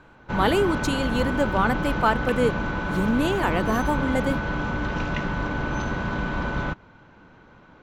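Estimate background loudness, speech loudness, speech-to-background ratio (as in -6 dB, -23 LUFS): -27.5 LUFS, -25.0 LUFS, 2.5 dB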